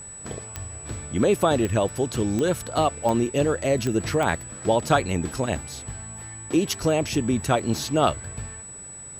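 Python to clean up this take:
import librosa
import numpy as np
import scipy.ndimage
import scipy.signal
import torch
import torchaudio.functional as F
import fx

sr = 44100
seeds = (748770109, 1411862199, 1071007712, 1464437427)

y = fx.fix_declick_ar(x, sr, threshold=10.0)
y = fx.notch(y, sr, hz=7900.0, q=30.0)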